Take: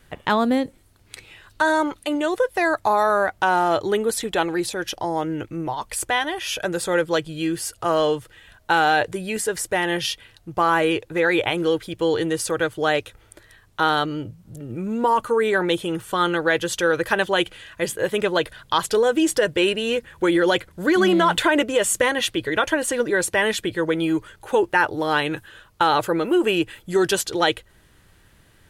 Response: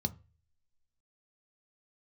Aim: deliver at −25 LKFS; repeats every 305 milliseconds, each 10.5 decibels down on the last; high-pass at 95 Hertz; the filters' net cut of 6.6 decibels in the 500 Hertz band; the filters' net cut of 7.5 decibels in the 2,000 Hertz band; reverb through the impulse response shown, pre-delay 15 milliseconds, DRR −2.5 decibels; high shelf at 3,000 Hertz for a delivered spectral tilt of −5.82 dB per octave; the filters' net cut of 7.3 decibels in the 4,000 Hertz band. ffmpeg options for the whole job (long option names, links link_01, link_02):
-filter_complex "[0:a]highpass=95,equalizer=frequency=500:width_type=o:gain=-8,equalizer=frequency=2000:width_type=o:gain=-8,highshelf=frequency=3000:gain=-3.5,equalizer=frequency=4000:width_type=o:gain=-3.5,aecho=1:1:305|610|915:0.299|0.0896|0.0269,asplit=2[link_01][link_02];[1:a]atrim=start_sample=2205,adelay=15[link_03];[link_02][link_03]afir=irnorm=-1:irlink=0,volume=1dB[link_04];[link_01][link_04]amix=inputs=2:normalize=0,volume=-6.5dB"